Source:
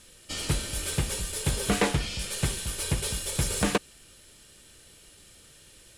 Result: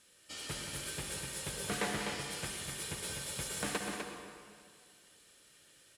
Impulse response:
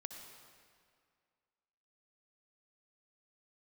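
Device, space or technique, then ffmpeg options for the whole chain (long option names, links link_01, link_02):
stadium PA: -filter_complex "[0:a]highpass=frequency=170:poles=1,lowshelf=frequency=230:gain=-3,equalizer=frequency=1600:width_type=o:width=0.73:gain=3,aecho=1:1:177.8|250.7:0.282|0.501[link_01];[1:a]atrim=start_sample=2205[link_02];[link_01][link_02]afir=irnorm=-1:irlink=0,volume=-6dB"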